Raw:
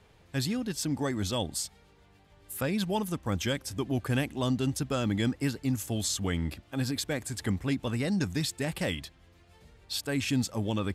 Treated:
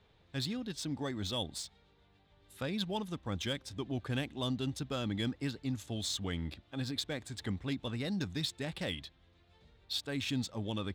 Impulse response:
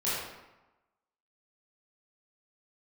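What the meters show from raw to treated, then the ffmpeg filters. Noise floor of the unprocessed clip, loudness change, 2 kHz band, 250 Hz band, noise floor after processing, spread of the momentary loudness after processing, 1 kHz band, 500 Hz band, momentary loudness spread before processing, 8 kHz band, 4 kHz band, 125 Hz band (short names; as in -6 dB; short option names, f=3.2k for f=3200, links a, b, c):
-60 dBFS, -6.5 dB, -6.5 dB, -7.0 dB, -67 dBFS, 5 LU, -7.0 dB, -7.0 dB, 5 LU, -10.0 dB, -2.0 dB, -7.0 dB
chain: -af "equalizer=f=3.7k:t=o:w=0.38:g=10,adynamicsmooth=sensitivity=6:basefreq=5.4k,volume=-7dB"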